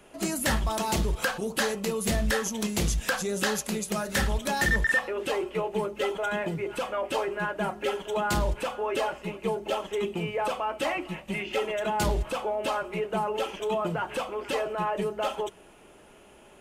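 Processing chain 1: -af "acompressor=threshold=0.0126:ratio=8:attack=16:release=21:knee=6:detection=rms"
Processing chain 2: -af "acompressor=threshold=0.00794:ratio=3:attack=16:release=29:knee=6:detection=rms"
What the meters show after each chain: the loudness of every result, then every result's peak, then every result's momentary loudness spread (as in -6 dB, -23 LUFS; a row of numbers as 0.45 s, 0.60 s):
-38.0 LUFS, -39.0 LUFS; -24.0 dBFS, -25.5 dBFS; 3 LU, 3 LU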